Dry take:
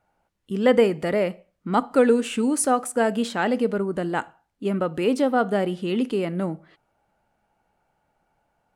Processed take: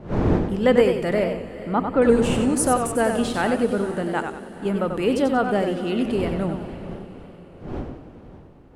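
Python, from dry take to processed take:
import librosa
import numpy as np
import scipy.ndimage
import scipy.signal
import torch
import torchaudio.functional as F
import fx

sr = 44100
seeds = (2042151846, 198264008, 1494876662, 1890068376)

p1 = fx.dmg_wind(x, sr, seeds[0], corner_hz=360.0, level_db=-32.0)
p2 = fx.air_absorb(p1, sr, metres=420.0, at=(1.24, 2.02))
p3 = p2 + fx.echo_diffused(p2, sr, ms=490, feedback_pct=46, wet_db=-15, dry=0)
y = fx.echo_warbled(p3, sr, ms=93, feedback_pct=36, rate_hz=2.8, cents=102, wet_db=-6.5)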